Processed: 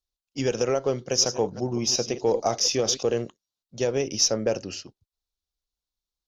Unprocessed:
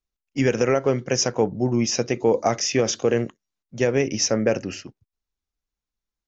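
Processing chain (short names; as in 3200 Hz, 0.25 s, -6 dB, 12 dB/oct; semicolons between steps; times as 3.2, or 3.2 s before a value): 0.89–3.03 reverse delay 0.179 s, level -12.5 dB; graphic EQ 125/250/2000/4000 Hz -4/-5/-11/+9 dB; added harmonics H 8 -39 dB, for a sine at -5.5 dBFS; gain -2 dB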